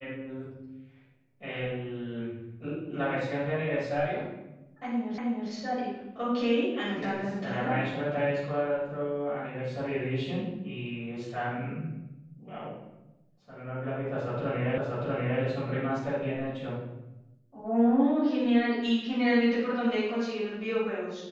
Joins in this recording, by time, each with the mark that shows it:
5.18 s: repeat of the last 0.32 s
14.78 s: repeat of the last 0.64 s

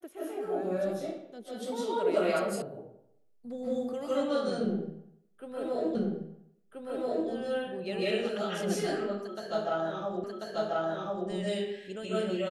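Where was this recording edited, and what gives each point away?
2.62 s: sound stops dead
5.95 s: repeat of the last 1.33 s
10.24 s: repeat of the last 1.04 s

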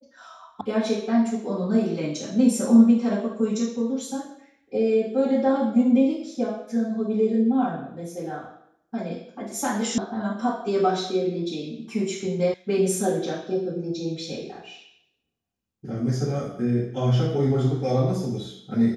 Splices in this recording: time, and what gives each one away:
0.61 s: sound stops dead
9.98 s: sound stops dead
12.54 s: sound stops dead

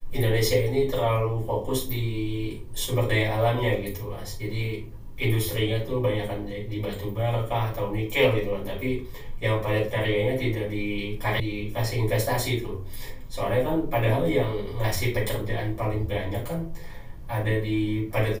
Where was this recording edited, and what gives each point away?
11.40 s: sound stops dead

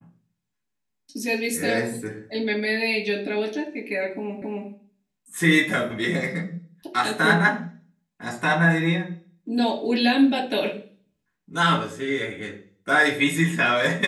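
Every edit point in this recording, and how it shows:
4.42 s: repeat of the last 0.27 s

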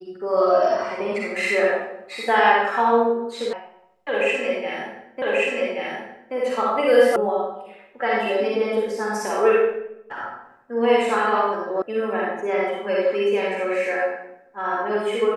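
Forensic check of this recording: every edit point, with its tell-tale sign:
3.53 s: sound stops dead
5.22 s: repeat of the last 1.13 s
7.16 s: sound stops dead
11.82 s: sound stops dead

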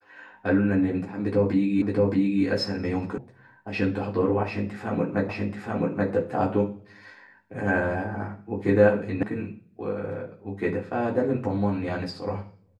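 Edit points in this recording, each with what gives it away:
1.82 s: repeat of the last 0.62 s
3.18 s: sound stops dead
5.29 s: repeat of the last 0.83 s
9.23 s: sound stops dead

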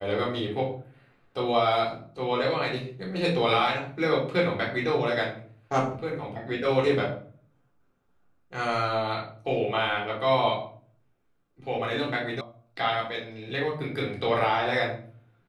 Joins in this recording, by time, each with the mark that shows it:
12.41 s: sound stops dead

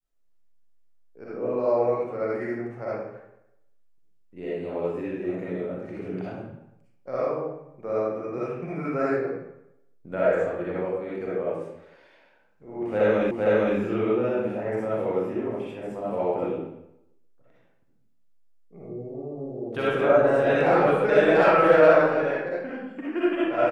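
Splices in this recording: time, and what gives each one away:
13.31 s: repeat of the last 0.46 s

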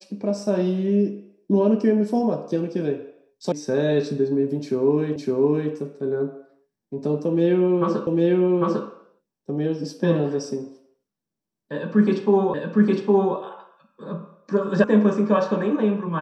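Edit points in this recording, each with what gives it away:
3.52 s: sound stops dead
5.16 s: repeat of the last 0.56 s
8.07 s: repeat of the last 0.8 s
12.54 s: repeat of the last 0.81 s
14.84 s: sound stops dead

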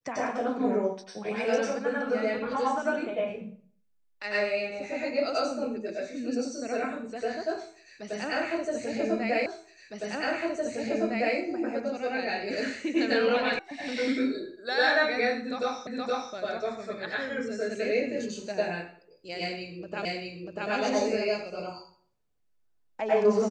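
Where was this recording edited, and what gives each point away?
9.46 s: repeat of the last 1.91 s
13.59 s: sound stops dead
15.87 s: repeat of the last 0.47 s
20.05 s: repeat of the last 0.64 s

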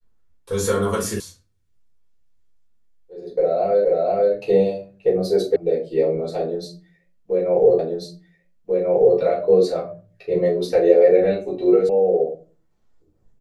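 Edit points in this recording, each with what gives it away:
1.20 s: sound stops dead
3.85 s: repeat of the last 0.48 s
5.56 s: sound stops dead
7.79 s: repeat of the last 1.39 s
11.89 s: sound stops dead

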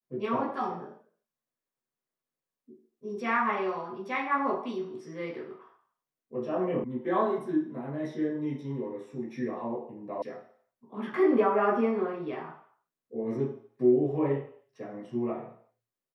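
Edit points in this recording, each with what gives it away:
6.84 s: sound stops dead
10.22 s: sound stops dead

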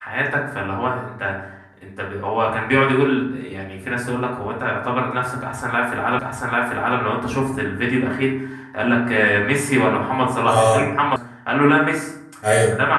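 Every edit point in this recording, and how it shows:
6.19 s: repeat of the last 0.79 s
11.16 s: sound stops dead

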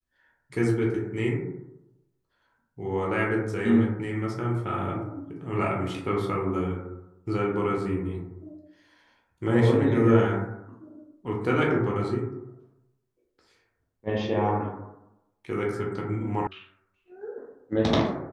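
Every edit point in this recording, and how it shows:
16.47 s: sound stops dead

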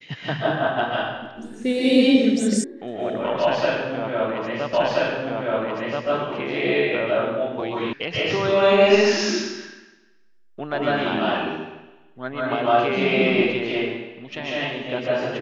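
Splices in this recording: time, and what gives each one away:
2.64 s: sound stops dead
4.73 s: repeat of the last 1.33 s
7.93 s: sound stops dead

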